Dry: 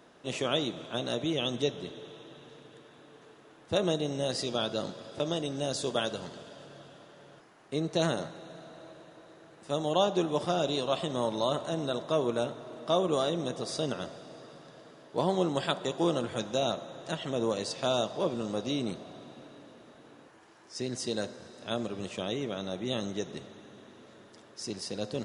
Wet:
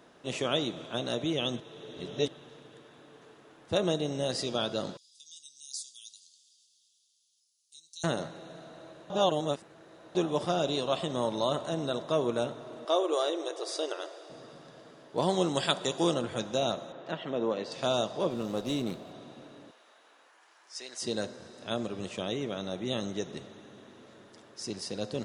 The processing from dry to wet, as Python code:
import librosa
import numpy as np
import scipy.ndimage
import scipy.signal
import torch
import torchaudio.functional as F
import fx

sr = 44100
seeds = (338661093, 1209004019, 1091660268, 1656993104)

y = fx.cheby2_highpass(x, sr, hz=1900.0, order=4, stop_db=50, at=(4.97, 8.04))
y = fx.brickwall_highpass(y, sr, low_hz=300.0, at=(12.85, 14.3))
y = fx.high_shelf(y, sr, hz=3200.0, db=9.0, at=(15.22, 16.14))
y = fx.bandpass_edges(y, sr, low_hz=180.0, high_hz=2900.0, at=(16.92, 17.72))
y = fx.running_max(y, sr, window=3, at=(18.3, 19.12))
y = fx.highpass(y, sr, hz=850.0, slope=12, at=(19.71, 21.02))
y = fx.edit(y, sr, fx.reverse_span(start_s=1.6, length_s=0.68),
    fx.reverse_span(start_s=9.1, length_s=1.05), tone=tone)